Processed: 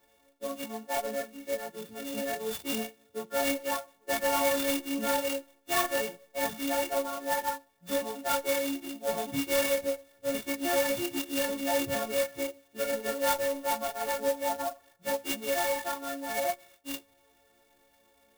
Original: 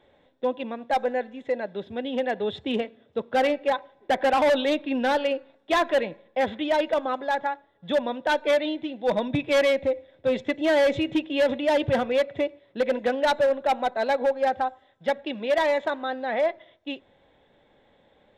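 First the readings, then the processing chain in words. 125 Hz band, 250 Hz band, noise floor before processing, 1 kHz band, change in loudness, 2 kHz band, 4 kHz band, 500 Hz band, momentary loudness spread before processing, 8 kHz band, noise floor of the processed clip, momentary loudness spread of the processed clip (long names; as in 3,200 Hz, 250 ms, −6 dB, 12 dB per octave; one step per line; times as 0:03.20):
−9.5 dB, −6.5 dB, −62 dBFS, −6.5 dB, −6.0 dB, −5.5 dB, −3.0 dB, −7.5 dB, 9 LU, can't be measured, −66 dBFS, 10 LU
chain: every partial snapped to a pitch grid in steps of 4 semitones
multi-voice chorus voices 6, 0.56 Hz, delay 29 ms, depth 4.3 ms
converter with an unsteady clock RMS 0.059 ms
level −4.5 dB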